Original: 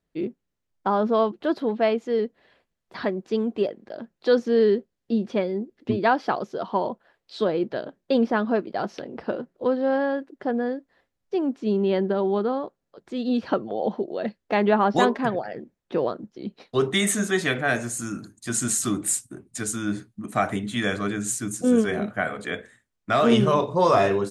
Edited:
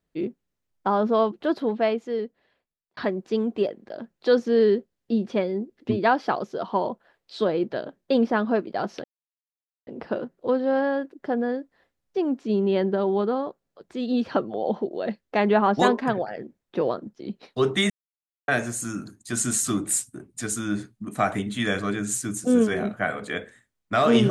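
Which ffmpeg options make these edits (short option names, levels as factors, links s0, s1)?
-filter_complex "[0:a]asplit=5[s0][s1][s2][s3][s4];[s0]atrim=end=2.97,asetpts=PTS-STARTPTS,afade=t=out:st=1.68:d=1.29[s5];[s1]atrim=start=2.97:end=9.04,asetpts=PTS-STARTPTS,afade=t=in:d=0.004:c=hsin,afade=t=out:st=6.066:d=0.004:c=hsin,apad=pad_dur=0.83[s6];[s2]atrim=start=9.04:end=17.07,asetpts=PTS-STARTPTS,afade=t=in:d=0.004:c=hsin,afade=t=out:st=8.026:d=0.004:c=hsin[s7];[s3]atrim=start=17.07:end=17.65,asetpts=PTS-STARTPTS,volume=0[s8];[s4]atrim=start=17.65,asetpts=PTS-STARTPTS,afade=t=in:d=0.004:c=hsin[s9];[s5][s6][s7][s8][s9]concat=n=5:v=0:a=1"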